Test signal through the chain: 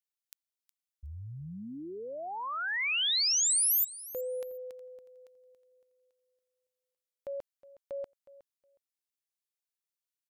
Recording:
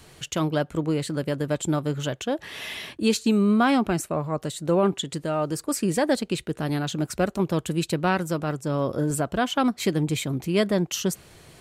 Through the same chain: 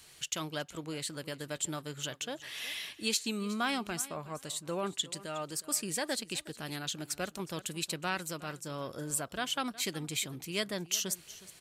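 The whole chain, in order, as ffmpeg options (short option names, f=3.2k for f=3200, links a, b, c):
-filter_complex "[0:a]tiltshelf=f=1.4k:g=-8,asplit=2[a][b];[b]aecho=0:1:365|730:0.126|0.0227[c];[a][c]amix=inputs=2:normalize=0,volume=-8.5dB"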